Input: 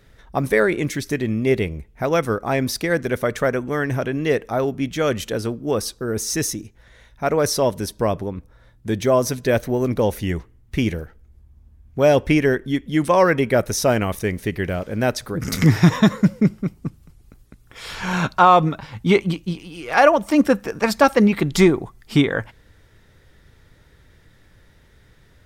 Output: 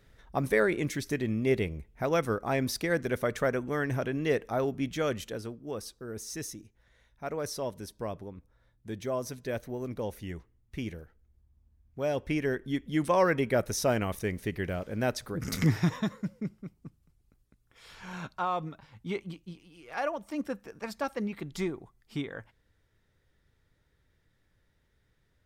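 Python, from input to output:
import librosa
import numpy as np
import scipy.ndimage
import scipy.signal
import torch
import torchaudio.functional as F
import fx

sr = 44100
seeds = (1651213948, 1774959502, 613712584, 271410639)

y = fx.gain(x, sr, db=fx.line((4.93, -8.0), (5.57, -15.5), (12.13, -15.5), (12.78, -9.0), (15.59, -9.0), (16.18, -18.5)))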